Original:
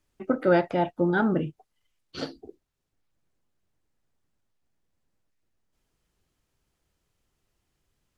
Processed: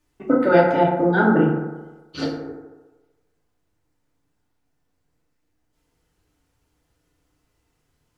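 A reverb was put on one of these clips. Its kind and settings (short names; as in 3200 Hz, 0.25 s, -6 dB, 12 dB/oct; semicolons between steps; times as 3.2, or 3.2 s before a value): FDN reverb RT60 1.2 s, low-frequency decay 0.8×, high-frequency decay 0.35×, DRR -3.5 dB; gain +2 dB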